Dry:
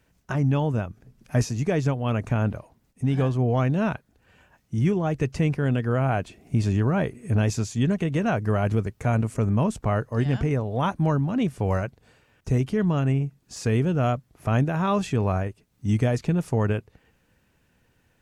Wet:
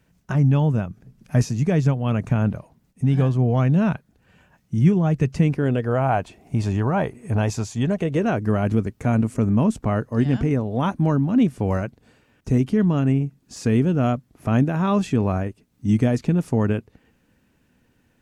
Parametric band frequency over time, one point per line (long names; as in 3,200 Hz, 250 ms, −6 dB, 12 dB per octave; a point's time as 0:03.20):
parametric band +8 dB 0.91 octaves
0:05.35 170 Hz
0:06.02 850 Hz
0:07.80 850 Hz
0:08.46 250 Hz